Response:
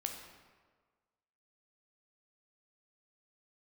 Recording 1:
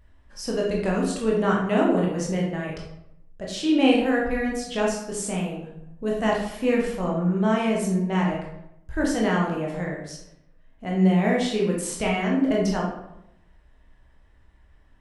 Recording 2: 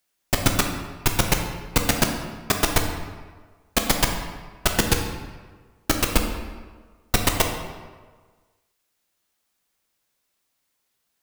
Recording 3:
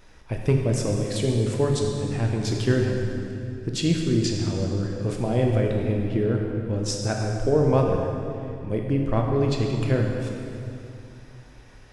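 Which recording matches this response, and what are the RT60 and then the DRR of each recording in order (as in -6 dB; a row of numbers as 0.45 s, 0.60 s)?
2; 0.85 s, 1.5 s, 2.8 s; -3.0 dB, 3.0 dB, 0.5 dB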